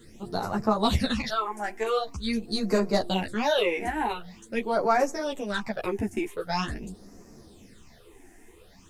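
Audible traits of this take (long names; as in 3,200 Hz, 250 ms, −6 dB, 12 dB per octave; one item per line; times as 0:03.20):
phaser sweep stages 8, 0.45 Hz, lowest notch 150–3,400 Hz
a quantiser's noise floor 12 bits, dither none
a shimmering, thickened sound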